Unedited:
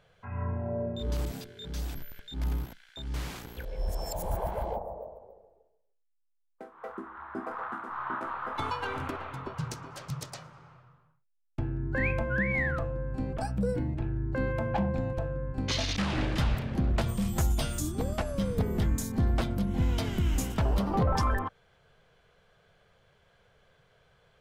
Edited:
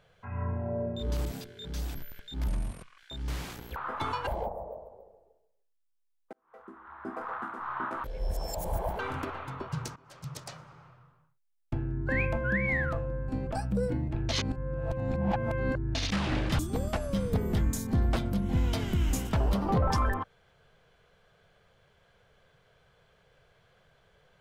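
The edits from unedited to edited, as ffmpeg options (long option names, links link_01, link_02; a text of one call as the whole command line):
ffmpeg -i in.wav -filter_complex "[0:a]asplit=12[link_01][link_02][link_03][link_04][link_05][link_06][link_07][link_08][link_09][link_10][link_11][link_12];[link_01]atrim=end=2.484[link_13];[link_02]atrim=start=2.48:end=2.84,asetpts=PTS-STARTPTS,asetrate=31752,aresample=44100[link_14];[link_03]atrim=start=2.836:end=3.622[link_15];[link_04]atrim=start=8.338:end=8.852[link_16];[link_05]atrim=start=4.568:end=6.63,asetpts=PTS-STARTPTS,afade=type=out:start_time=2.058:duration=0.004:curve=hsin[link_17];[link_06]atrim=start=6.63:end=8.342,asetpts=PTS-STARTPTS,afade=type=in:duration=0.94[link_18];[link_07]atrim=start=3.618:end=4.572[link_19];[link_08]atrim=start=8.848:end=9.82,asetpts=PTS-STARTPTS,afade=type=out:start_time=0.968:duration=0.004:curve=hsin:silence=0.1[link_20];[link_09]atrim=start=9.82:end=14.152,asetpts=PTS-STARTPTS,afade=type=in:duration=0.56:silence=0.1[link_21];[link_10]atrim=start=14.148:end=15.812,asetpts=PTS-STARTPTS,areverse[link_22];[link_11]atrim=start=15.808:end=16.452[link_23];[link_12]atrim=start=17.838[link_24];[link_13][link_14]acrossfade=duration=0.004:curve1=hsin:curve2=hsin[link_25];[link_25][link_15]acrossfade=duration=0.004:curve1=hsin:curve2=hsin[link_26];[link_26][link_16]acrossfade=duration=0.004:curve1=hsin:curve2=hsin[link_27];[link_17][link_18]concat=n=2:v=0:a=1[link_28];[link_27][link_28]acrossfade=duration=0.004:curve1=hsin:curve2=hsin[link_29];[link_29][link_19]acrossfade=duration=0.004:curve1=hsin:curve2=hsin[link_30];[link_20][link_21]concat=n=2:v=0:a=1[link_31];[link_30][link_31]acrossfade=duration=0.004:curve1=hsin:curve2=hsin[link_32];[link_32][link_22]acrossfade=duration=0.004:curve1=hsin:curve2=hsin[link_33];[link_33][link_23]acrossfade=duration=0.004:curve1=hsin:curve2=hsin[link_34];[link_34][link_24]acrossfade=duration=0.004:curve1=hsin:curve2=hsin" out.wav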